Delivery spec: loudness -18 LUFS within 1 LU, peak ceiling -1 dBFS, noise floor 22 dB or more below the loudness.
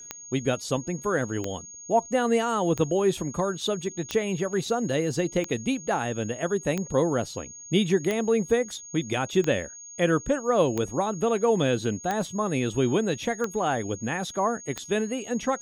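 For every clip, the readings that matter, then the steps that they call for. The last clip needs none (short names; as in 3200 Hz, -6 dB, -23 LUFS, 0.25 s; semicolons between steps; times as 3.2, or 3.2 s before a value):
clicks 12; steady tone 6600 Hz; tone level -41 dBFS; loudness -26.5 LUFS; peak -10.0 dBFS; loudness target -18.0 LUFS
-> de-click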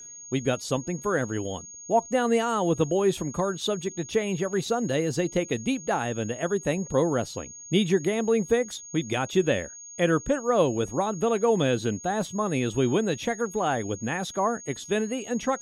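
clicks 0; steady tone 6600 Hz; tone level -41 dBFS
-> notch 6600 Hz, Q 30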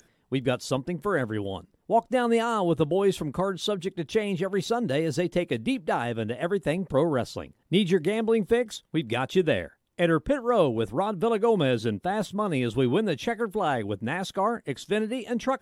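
steady tone none; loudness -26.5 LUFS; peak -10.0 dBFS; loudness target -18.0 LUFS
-> gain +8.5 dB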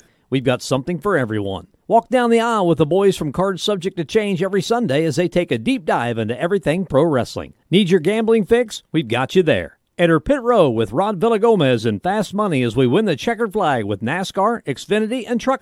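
loudness -18.0 LUFS; peak -1.5 dBFS; noise floor -60 dBFS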